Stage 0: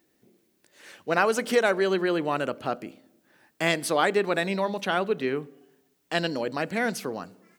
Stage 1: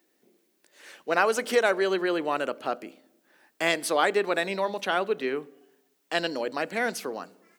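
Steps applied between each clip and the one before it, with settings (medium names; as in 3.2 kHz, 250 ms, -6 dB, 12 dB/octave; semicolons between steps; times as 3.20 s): high-pass 290 Hz 12 dB/octave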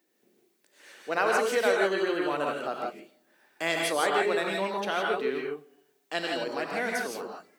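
gated-style reverb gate 190 ms rising, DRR -0.5 dB; trim -4.5 dB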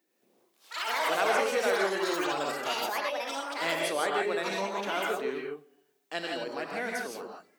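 ever faster or slower copies 109 ms, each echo +6 st, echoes 3; trim -3.5 dB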